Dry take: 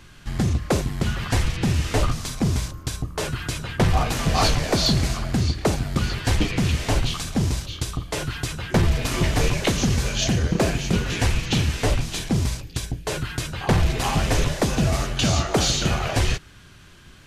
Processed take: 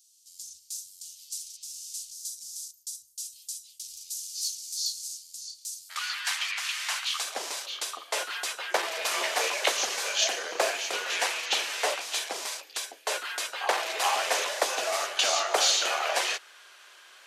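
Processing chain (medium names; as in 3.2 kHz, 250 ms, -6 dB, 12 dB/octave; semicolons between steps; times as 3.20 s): inverse Chebyshev high-pass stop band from 1.7 kHz, stop band 60 dB, from 5.89 s stop band from 330 Hz, from 7.18 s stop band from 160 Hz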